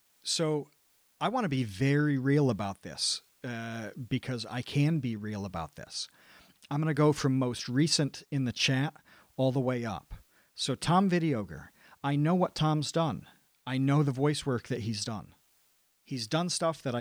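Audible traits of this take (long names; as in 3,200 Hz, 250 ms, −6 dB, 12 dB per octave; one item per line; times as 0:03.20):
a quantiser's noise floor 12 bits, dither triangular
tremolo triangle 1.3 Hz, depth 45%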